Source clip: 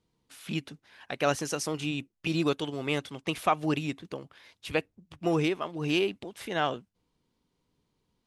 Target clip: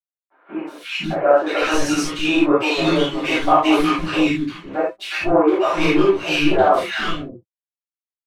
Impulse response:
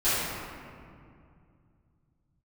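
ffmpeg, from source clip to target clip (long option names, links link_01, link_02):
-filter_complex "[0:a]flanger=delay=6.1:depth=4.8:regen=-84:speed=0.36:shape=sinusoidal,aeval=exprs='sgn(val(0))*max(abs(val(0))-0.00224,0)':channel_layout=same,asplit=2[link_01][link_02];[link_02]highpass=frequency=720:poles=1,volume=20dB,asoftclip=type=tanh:threshold=-15.5dB[link_03];[link_01][link_03]amix=inputs=2:normalize=0,lowpass=frequency=1500:poles=1,volume=-6dB,acrossover=split=300|1400[link_04][link_05][link_06];[link_06]adelay=360[link_07];[link_04]adelay=510[link_08];[link_08][link_05][link_07]amix=inputs=3:normalize=0[link_09];[1:a]atrim=start_sample=2205,afade=type=out:start_time=0.14:duration=0.01,atrim=end_sample=6615,asetrate=39690,aresample=44100[link_10];[link_09][link_10]afir=irnorm=-1:irlink=0,volume=2.5dB"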